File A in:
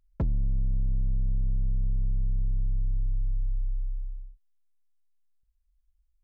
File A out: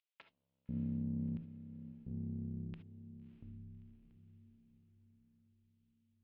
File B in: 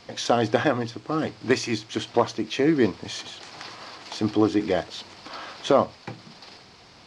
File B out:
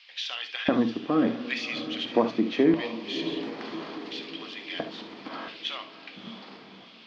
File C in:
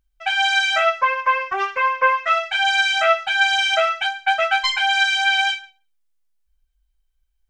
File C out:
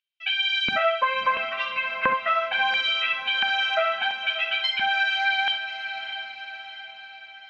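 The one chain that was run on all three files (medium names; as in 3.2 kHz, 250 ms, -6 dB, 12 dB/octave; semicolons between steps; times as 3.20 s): LFO high-pass square 0.73 Hz 220–2800 Hz; treble shelf 4.7 kHz +7.5 dB; on a send: echo that smears into a reverb 621 ms, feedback 52%, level -13 dB; on the sum: compression 2:1, threshold -19 dBFS; distance through air 330 m; gated-style reverb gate 90 ms rising, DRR 9 dB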